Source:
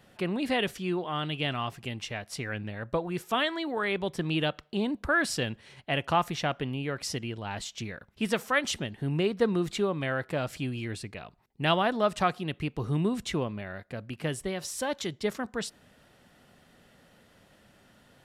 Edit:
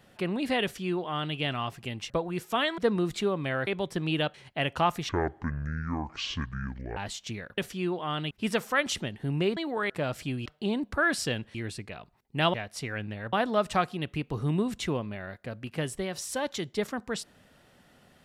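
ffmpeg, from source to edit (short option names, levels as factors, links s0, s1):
-filter_complex "[0:a]asplit=15[s0][s1][s2][s3][s4][s5][s6][s7][s8][s9][s10][s11][s12][s13][s14];[s0]atrim=end=2.102[s15];[s1]atrim=start=2.888:end=3.572[s16];[s2]atrim=start=9.348:end=10.242[s17];[s3]atrim=start=3.898:end=4.572[s18];[s4]atrim=start=5.658:end=6.414[s19];[s5]atrim=start=6.41:end=7.48,asetpts=PTS-STARTPTS,asetrate=25137,aresample=44100,atrim=end_sample=82784,asetpts=PTS-STARTPTS[s20];[s6]atrim=start=7.476:end=8.092[s21];[s7]atrim=start=0.628:end=1.362[s22];[s8]atrim=start=8.088:end=9.352[s23];[s9]atrim=start=3.568:end=3.902[s24];[s10]atrim=start=10.238:end=10.802[s25];[s11]atrim=start=4.568:end=5.662[s26];[s12]atrim=start=10.798:end=11.792[s27];[s13]atrim=start=2.098:end=2.892[s28];[s14]atrim=start=11.788[s29];[s15][s16]acrossfade=d=0.004:c1=hsin:c2=hsin[s30];[s30][s17]acrossfade=d=0.004:c1=hsin:c2=hsin[s31];[s31][s18]acrossfade=d=0.004:c1=hsin:c2=hsin[s32];[s32][s19]acrossfade=d=0.004:c1=hsin:c2=hsin[s33];[s33][s20]acrossfade=d=0.004:c1=hsin:c2=hsin[s34];[s34][s21]acrossfade=d=0.004:c1=hsin:c2=hsin[s35];[s35][s22]acrossfade=d=0.004:c1=hsin:c2=hsin[s36];[s36][s23]acrossfade=d=0.004:c1=hsin:c2=hsin[s37];[s37][s24]acrossfade=d=0.004:c1=hsin:c2=hsin[s38];[s38][s25]acrossfade=d=0.004:c1=hsin:c2=hsin[s39];[s39][s26]acrossfade=d=0.004:c1=hsin:c2=hsin[s40];[s40][s27]acrossfade=d=0.004:c1=hsin:c2=hsin[s41];[s41][s28]acrossfade=d=0.004:c1=hsin:c2=hsin[s42];[s42][s29]acrossfade=d=0.004:c1=hsin:c2=hsin"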